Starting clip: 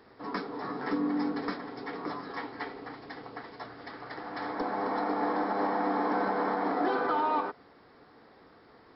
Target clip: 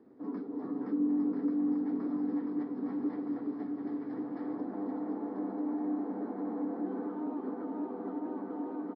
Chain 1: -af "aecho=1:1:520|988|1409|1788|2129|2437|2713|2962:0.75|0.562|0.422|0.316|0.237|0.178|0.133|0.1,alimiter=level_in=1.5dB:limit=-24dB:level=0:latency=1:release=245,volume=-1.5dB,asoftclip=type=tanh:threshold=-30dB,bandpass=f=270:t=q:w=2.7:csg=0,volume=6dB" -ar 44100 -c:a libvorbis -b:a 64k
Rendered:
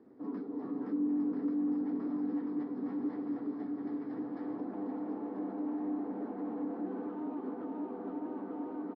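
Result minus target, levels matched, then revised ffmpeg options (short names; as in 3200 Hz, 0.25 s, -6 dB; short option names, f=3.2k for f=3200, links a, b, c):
soft clip: distortion +19 dB
-af "aecho=1:1:520|988|1409|1788|2129|2437|2713|2962:0.75|0.562|0.422|0.316|0.237|0.178|0.133|0.1,alimiter=level_in=1.5dB:limit=-24dB:level=0:latency=1:release=245,volume=-1.5dB,asoftclip=type=tanh:threshold=-18.5dB,bandpass=f=270:t=q:w=2.7:csg=0,volume=6dB" -ar 44100 -c:a libvorbis -b:a 64k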